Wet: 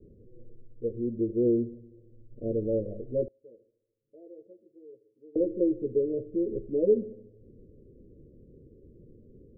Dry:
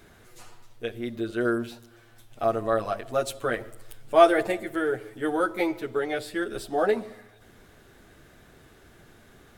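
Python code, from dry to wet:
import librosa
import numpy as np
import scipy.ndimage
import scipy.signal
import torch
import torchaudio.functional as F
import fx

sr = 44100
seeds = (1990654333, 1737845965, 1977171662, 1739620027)

y = scipy.signal.sosfilt(scipy.signal.butter(16, 540.0, 'lowpass', fs=sr, output='sos'), x)
y = fx.differentiator(y, sr, at=(3.28, 5.36))
y = F.gain(torch.from_numpy(y), 2.0).numpy()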